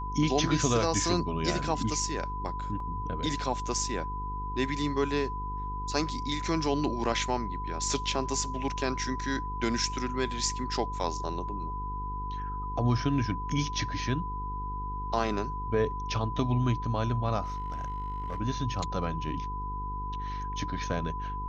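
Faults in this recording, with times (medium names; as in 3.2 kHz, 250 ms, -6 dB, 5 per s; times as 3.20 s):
buzz 50 Hz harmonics 9 -37 dBFS
whine 1 kHz -35 dBFS
2.80 s: dropout 2.9 ms
17.43–18.40 s: clipped -29.5 dBFS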